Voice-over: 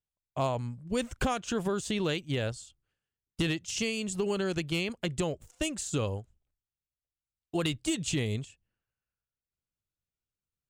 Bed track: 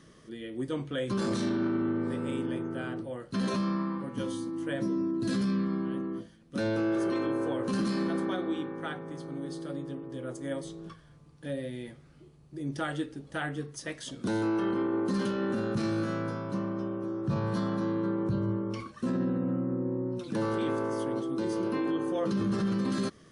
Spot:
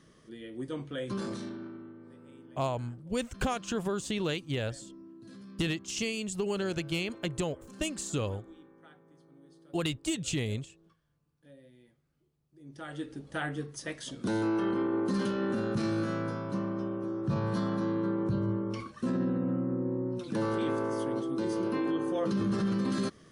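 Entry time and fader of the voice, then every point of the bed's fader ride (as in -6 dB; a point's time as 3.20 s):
2.20 s, -1.5 dB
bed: 1.15 s -4 dB
1.97 s -20 dB
12.52 s -20 dB
13.14 s -0.5 dB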